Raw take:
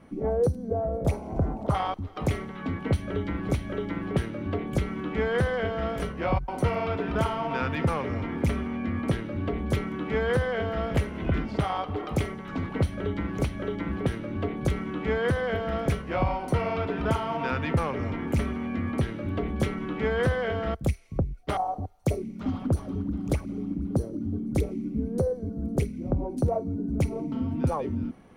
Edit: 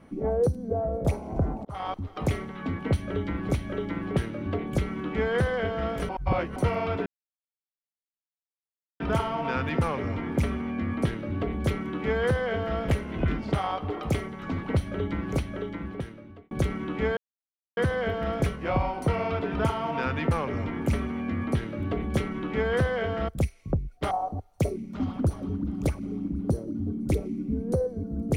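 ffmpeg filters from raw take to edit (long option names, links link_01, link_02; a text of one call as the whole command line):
ffmpeg -i in.wav -filter_complex "[0:a]asplit=7[link_01][link_02][link_03][link_04][link_05][link_06][link_07];[link_01]atrim=end=1.65,asetpts=PTS-STARTPTS,afade=type=out:start_time=1.646:duration=0.004:curve=hsin[link_08];[link_02]atrim=start=1.65:end=6.092,asetpts=PTS-STARTPTS,afade=type=in:duration=0.31[link_09];[link_03]atrim=start=6.088:end=6.562,asetpts=PTS-STARTPTS,areverse[link_10];[link_04]atrim=start=6.558:end=7.06,asetpts=PTS-STARTPTS,afade=type=out:start_time=0.498:duration=0.004:curve=hsin,apad=pad_dur=1.94[link_11];[link_05]atrim=start=7.06:end=14.57,asetpts=PTS-STARTPTS,afade=type=in:duration=0.004:curve=hsin,afade=type=out:start_time=6.34:duration=1.17[link_12];[link_06]atrim=start=14.57:end=15.23,asetpts=PTS-STARTPTS,afade=type=in:duration=0.004:curve=hsin,afade=type=out:start_time=0.656:duration=0.004:curve=hsin,apad=pad_dur=0.6[link_13];[link_07]atrim=start=15.23,asetpts=PTS-STARTPTS,afade=type=in:duration=0.004:curve=hsin[link_14];[link_08][link_09]concat=n=2:v=0:a=1[link_15];[link_15][link_10]acrossfade=duration=0.004:curve1=hsin:curve2=hsin[link_16];[link_11][link_12][link_13][link_14]concat=n=4:v=0:a=1[link_17];[link_16][link_17]acrossfade=duration=0.004:curve1=hsin:curve2=hsin" out.wav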